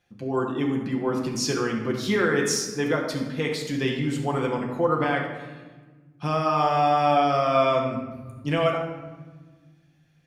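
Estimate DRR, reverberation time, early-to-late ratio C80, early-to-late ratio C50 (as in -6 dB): -0.5 dB, 1.4 s, 6.5 dB, 4.5 dB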